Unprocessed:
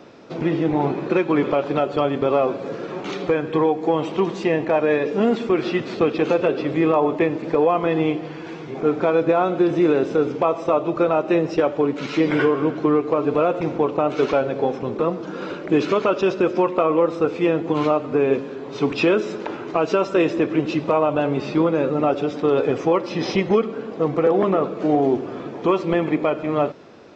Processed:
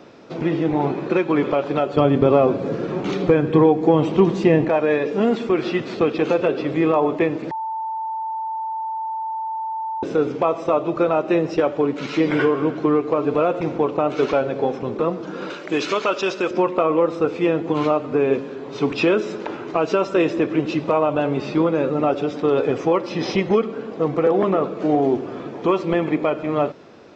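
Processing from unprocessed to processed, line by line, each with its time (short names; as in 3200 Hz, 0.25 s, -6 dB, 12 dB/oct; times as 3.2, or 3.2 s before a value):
1.97–4.69 low shelf 330 Hz +11.5 dB
7.51–10.03 bleep 888 Hz -23.5 dBFS
15.5–16.51 tilt +3 dB/oct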